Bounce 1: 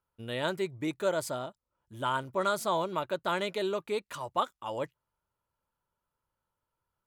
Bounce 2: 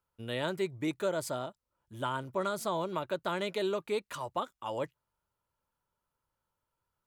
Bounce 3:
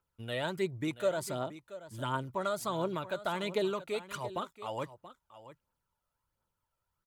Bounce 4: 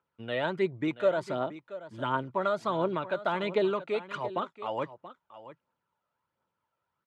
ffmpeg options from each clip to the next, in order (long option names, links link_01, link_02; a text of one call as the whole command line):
ffmpeg -i in.wav -filter_complex "[0:a]acrossover=split=430[link_01][link_02];[link_02]acompressor=threshold=-31dB:ratio=6[link_03];[link_01][link_03]amix=inputs=2:normalize=0" out.wav
ffmpeg -i in.wav -af "aphaser=in_gain=1:out_gain=1:delay=1.7:decay=0.45:speed=1.4:type=triangular,aecho=1:1:680:0.178,volume=-1.5dB" out.wav
ffmpeg -i in.wav -af "highpass=170,lowpass=2800,volume=5dB" out.wav